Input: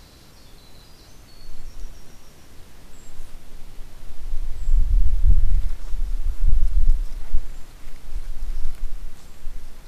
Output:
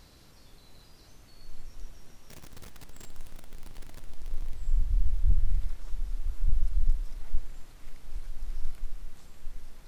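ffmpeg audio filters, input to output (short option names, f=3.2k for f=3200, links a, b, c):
-filter_complex "[0:a]asettb=1/sr,asplit=3[a][b][c];[a]atrim=end=2.304[d];[b]atrim=start=2.3:end=4.55,asetpts=PTS-STARTPTS,afade=t=in:d=0.004:c=qsin,afade=t=out:st=2.246:d=0.004:c=qsin,aeval=exprs='val(0)+0.5*0.0224*sgn(val(0))':c=same[e];[c]atrim=start=4.546[f];[d][e]acrossfade=d=0.004:c1=hsin:c2=qsin[g];[g][f]acrossfade=d=0.004:c1=qsin:c2=hsin,volume=-8dB"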